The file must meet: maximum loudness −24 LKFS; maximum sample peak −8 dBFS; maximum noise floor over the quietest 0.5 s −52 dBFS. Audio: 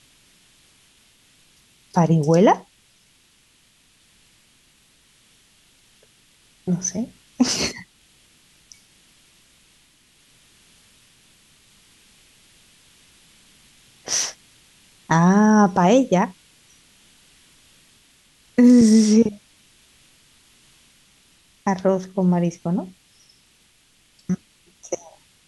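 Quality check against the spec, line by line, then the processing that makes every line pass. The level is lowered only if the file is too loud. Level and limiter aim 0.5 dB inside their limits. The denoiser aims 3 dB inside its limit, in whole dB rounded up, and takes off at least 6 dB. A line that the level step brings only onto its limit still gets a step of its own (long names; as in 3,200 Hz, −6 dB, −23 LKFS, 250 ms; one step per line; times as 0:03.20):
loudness −19.0 LKFS: out of spec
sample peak −5.5 dBFS: out of spec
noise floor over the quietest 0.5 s −58 dBFS: in spec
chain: level −5.5 dB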